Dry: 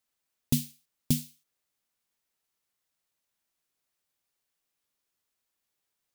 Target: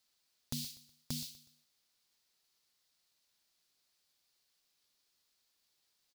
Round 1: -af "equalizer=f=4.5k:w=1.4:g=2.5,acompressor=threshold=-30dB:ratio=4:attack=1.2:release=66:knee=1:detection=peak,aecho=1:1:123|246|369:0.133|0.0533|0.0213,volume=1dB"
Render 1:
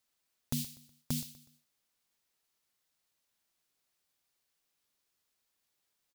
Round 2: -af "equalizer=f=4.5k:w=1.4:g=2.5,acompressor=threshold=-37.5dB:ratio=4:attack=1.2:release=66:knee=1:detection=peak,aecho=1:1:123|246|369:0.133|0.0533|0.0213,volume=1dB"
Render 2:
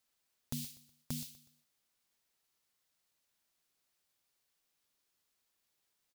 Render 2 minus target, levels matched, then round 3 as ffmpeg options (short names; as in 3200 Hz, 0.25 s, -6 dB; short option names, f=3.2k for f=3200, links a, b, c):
4000 Hz band -5.0 dB
-af "equalizer=f=4.5k:w=1.4:g=11,acompressor=threshold=-37.5dB:ratio=4:attack=1.2:release=66:knee=1:detection=peak,aecho=1:1:123|246|369:0.133|0.0533|0.0213,volume=1dB"